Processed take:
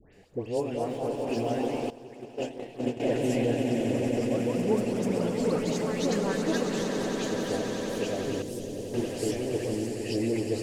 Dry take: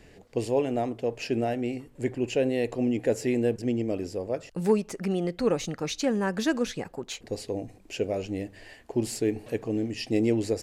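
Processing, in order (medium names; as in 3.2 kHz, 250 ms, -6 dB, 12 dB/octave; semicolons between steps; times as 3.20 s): 0.74–1.37 s: companding laws mixed up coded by A; echo with a slow build-up 92 ms, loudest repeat 8, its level -10 dB; ever faster or slower copies 287 ms, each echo +2 st, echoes 3, each echo -6 dB; phase dispersion highs, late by 134 ms, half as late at 1.8 kHz; 1.90–3.00 s: gate -20 dBFS, range -15 dB; 8.42–8.94 s: peaking EQ 1.5 kHz -13.5 dB 2.6 oct; trim -4.5 dB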